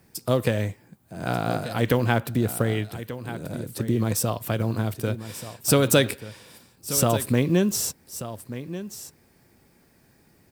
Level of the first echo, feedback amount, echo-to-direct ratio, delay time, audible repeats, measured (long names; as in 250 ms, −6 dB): −13.0 dB, repeats not evenly spaced, −13.0 dB, 1,185 ms, 1